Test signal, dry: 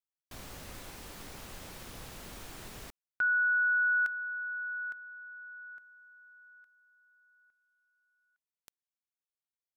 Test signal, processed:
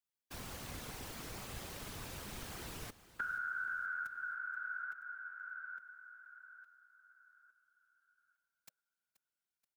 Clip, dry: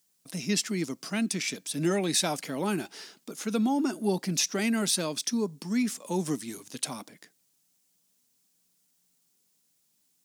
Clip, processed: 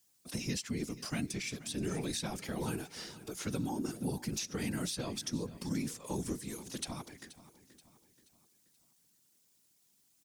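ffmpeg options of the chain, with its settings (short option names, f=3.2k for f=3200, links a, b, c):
-filter_complex "[0:a]bandreject=f=590:w=17,afftfilt=real='hypot(re,im)*cos(2*PI*random(0))':imag='hypot(re,im)*sin(2*PI*random(1))':win_size=512:overlap=0.75,acrossover=split=220|6400[a][b][c];[a]acompressor=threshold=-44dB:ratio=4[d];[b]acompressor=threshold=-46dB:ratio=4[e];[c]acompressor=threshold=-53dB:ratio=4[f];[d][e][f]amix=inputs=3:normalize=0,aecho=1:1:479|958|1437|1916:0.141|0.0636|0.0286|0.0129,volume=6dB"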